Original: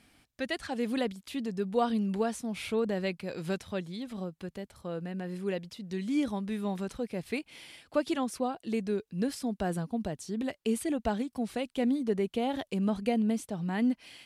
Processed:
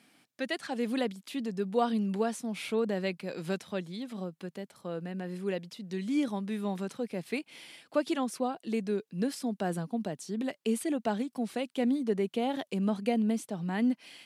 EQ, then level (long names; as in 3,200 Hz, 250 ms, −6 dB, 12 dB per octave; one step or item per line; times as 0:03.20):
high-pass filter 150 Hz 24 dB per octave
0.0 dB